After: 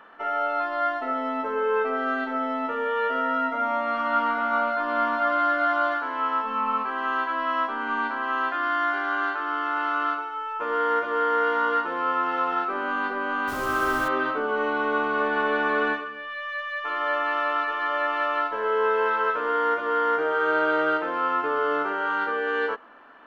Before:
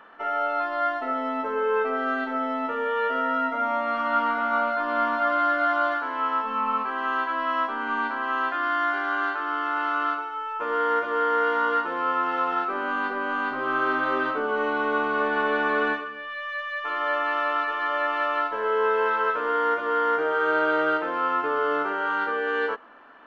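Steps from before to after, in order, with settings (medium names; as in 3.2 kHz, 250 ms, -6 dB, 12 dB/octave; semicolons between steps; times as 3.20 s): 13.47–14.07 s: added noise pink -39 dBFS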